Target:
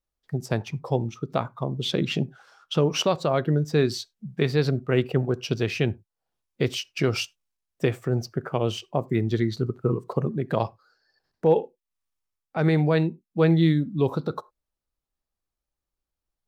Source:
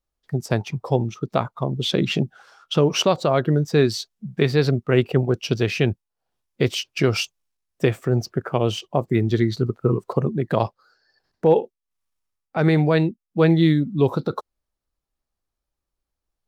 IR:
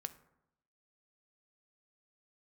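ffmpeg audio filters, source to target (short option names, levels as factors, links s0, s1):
-filter_complex "[0:a]asplit=2[s0][s1];[1:a]atrim=start_sample=2205,afade=t=out:st=0.15:d=0.01,atrim=end_sample=7056[s2];[s1][s2]afir=irnorm=-1:irlink=0,volume=0.794[s3];[s0][s3]amix=inputs=2:normalize=0,volume=0.398"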